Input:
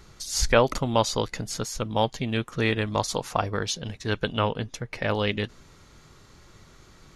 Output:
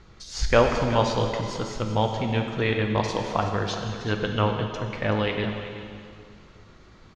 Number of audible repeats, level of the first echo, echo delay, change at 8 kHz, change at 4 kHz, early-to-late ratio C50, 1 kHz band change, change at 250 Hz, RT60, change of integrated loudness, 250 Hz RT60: 1, −13.0 dB, 377 ms, −8.5 dB, −2.0 dB, 4.0 dB, +1.5 dB, +2.0 dB, 2.3 s, +1.0 dB, 2.3 s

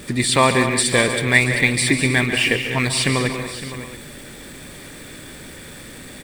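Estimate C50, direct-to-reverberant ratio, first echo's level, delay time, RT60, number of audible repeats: no reverb audible, no reverb audible, −11.5 dB, 142 ms, no reverb audible, 6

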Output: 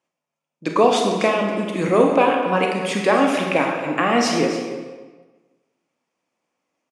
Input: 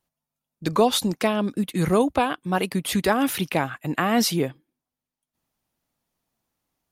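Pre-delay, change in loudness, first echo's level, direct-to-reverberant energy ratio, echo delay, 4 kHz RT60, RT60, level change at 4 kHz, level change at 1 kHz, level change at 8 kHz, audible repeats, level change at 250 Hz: 23 ms, +4.5 dB, −12.5 dB, 0.5 dB, 275 ms, 1.0 s, 1.3 s, +1.0 dB, +5.5 dB, −1.5 dB, 1, +2.0 dB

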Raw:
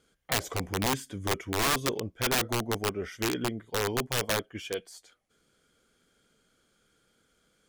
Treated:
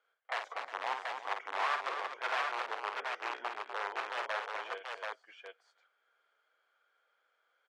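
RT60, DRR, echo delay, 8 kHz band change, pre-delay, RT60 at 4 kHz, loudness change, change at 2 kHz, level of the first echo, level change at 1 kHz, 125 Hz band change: no reverb audible, no reverb audible, 50 ms, −24.0 dB, no reverb audible, no reverb audible, −7.0 dB, −3.0 dB, −6.5 dB, −0.5 dB, below −40 dB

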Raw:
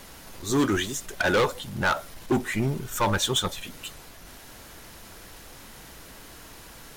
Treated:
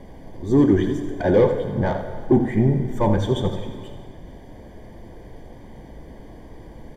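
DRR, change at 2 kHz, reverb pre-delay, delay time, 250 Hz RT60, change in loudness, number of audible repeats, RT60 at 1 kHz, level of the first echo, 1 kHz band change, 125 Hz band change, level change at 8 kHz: 6.0 dB, −7.5 dB, 13 ms, 83 ms, 2.1 s, +5.5 dB, 1, 2.3 s, −11.0 dB, −0.5 dB, +9.0 dB, below −15 dB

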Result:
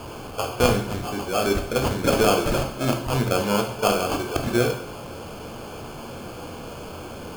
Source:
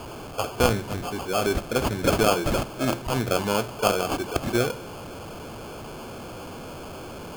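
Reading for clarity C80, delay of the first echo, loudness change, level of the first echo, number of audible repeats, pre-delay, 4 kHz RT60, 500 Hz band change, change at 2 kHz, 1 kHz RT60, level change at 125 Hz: 12.5 dB, no echo audible, +2.0 dB, no echo audible, no echo audible, 7 ms, 0.55 s, +2.0 dB, +1.5 dB, 0.55 s, +2.5 dB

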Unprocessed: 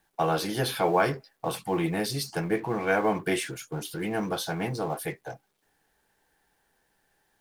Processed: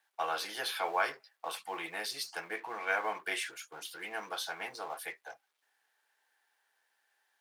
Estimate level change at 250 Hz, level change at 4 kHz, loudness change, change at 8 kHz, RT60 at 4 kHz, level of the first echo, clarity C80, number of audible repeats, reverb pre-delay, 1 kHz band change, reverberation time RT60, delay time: −22.5 dB, −3.5 dB, −8.0 dB, −6.5 dB, no reverb audible, no echo audible, no reverb audible, no echo audible, no reverb audible, −6.5 dB, no reverb audible, no echo audible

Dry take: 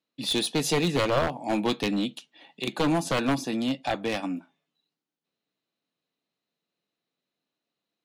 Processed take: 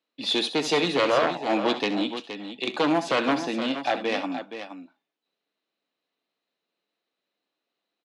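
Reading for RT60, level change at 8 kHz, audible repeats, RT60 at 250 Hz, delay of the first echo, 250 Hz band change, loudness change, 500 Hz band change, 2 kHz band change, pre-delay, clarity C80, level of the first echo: no reverb audible, −5.0 dB, 2, no reverb audible, 67 ms, 0.0 dB, +2.0 dB, +3.5 dB, +4.0 dB, no reverb audible, no reverb audible, −13.5 dB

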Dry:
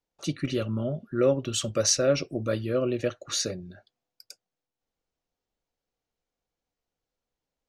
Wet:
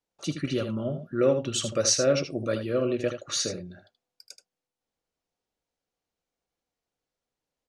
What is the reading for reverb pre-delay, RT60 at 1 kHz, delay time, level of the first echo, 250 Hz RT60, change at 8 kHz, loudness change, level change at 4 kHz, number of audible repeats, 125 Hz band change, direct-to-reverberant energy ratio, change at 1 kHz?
no reverb audible, no reverb audible, 78 ms, −9.0 dB, no reverb audible, +0.5 dB, +0.5 dB, +0.5 dB, 1, −1.5 dB, no reverb audible, +0.5 dB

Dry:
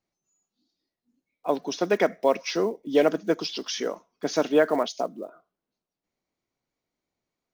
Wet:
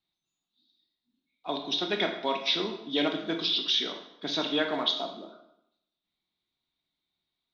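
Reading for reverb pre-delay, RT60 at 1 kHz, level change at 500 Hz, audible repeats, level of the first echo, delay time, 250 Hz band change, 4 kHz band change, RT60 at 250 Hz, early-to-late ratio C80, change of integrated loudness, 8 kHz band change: 17 ms, 0.80 s, −9.5 dB, no echo audible, no echo audible, no echo audible, −4.5 dB, +8.5 dB, 0.80 s, 10.0 dB, −3.0 dB, can't be measured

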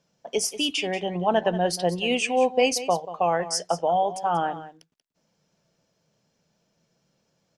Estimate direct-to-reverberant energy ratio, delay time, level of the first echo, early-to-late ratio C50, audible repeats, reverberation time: no reverb audible, 185 ms, −14.0 dB, no reverb audible, 1, no reverb audible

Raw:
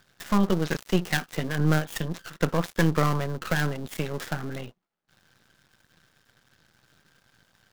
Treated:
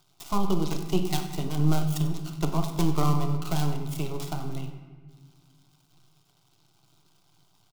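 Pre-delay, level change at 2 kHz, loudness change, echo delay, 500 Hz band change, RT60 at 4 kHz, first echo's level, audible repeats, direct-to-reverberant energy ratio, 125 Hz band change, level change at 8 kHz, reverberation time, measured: 4 ms, −13.5 dB, −1.5 dB, 95 ms, −4.0 dB, 1.0 s, −16.0 dB, 1, 5.5 dB, +0.5 dB, 0.0 dB, 1.5 s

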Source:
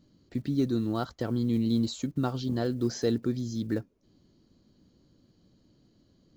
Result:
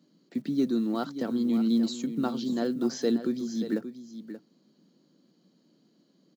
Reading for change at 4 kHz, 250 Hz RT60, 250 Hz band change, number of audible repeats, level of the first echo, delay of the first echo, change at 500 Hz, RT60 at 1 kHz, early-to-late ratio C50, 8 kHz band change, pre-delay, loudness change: +0.5 dB, no reverb audible, +2.5 dB, 1, −11.5 dB, 581 ms, +0.5 dB, no reverb audible, no reverb audible, can't be measured, no reverb audible, +1.0 dB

